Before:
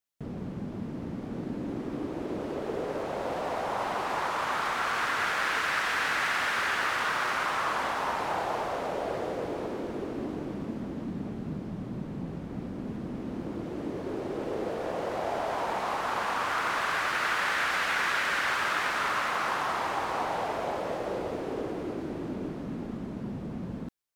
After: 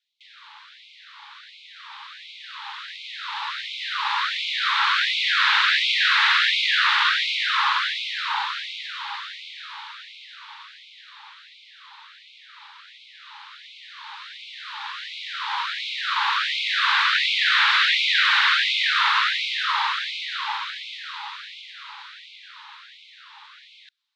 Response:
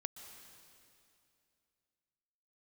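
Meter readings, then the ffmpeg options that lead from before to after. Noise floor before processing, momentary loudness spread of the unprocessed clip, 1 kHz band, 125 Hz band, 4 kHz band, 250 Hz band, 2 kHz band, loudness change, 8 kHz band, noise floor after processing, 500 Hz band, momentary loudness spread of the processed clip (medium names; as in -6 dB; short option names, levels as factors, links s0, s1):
-38 dBFS, 10 LU, +3.0 dB, under -40 dB, +16.5 dB, under -40 dB, +8.5 dB, +10.5 dB, 0.0 dB, -50 dBFS, under -40 dB, 21 LU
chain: -af "lowpass=f=3800:t=q:w=4.1,afreqshift=-14,afftfilt=real='re*gte(b*sr/1024,780*pow(2100/780,0.5+0.5*sin(2*PI*1.4*pts/sr)))':imag='im*gte(b*sr/1024,780*pow(2100/780,0.5+0.5*sin(2*PI*1.4*pts/sr)))':win_size=1024:overlap=0.75,volume=2.37"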